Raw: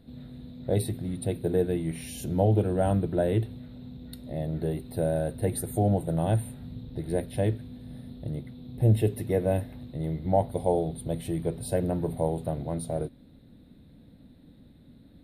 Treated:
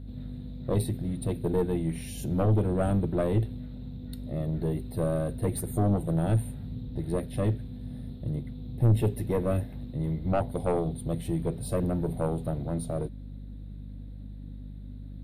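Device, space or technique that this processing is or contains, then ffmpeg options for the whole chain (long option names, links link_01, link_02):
valve amplifier with mains hum: -af "aeval=exprs='(tanh(8.91*val(0)+0.5)-tanh(0.5))/8.91':channel_layout=same,aeval=exprs='val(0)+0.00708*(sin(2*PI*50*n/s)+sin(2*PI*2*50*n/s)/2+sin(2*PI*3*50*n/s)/3+sin(2*PI*4*50*n/s)/4+sin(2*PI*5*50*n/s)/5)':channel_layout=same,equalizer=frequency=100:width=0.32:gain=4"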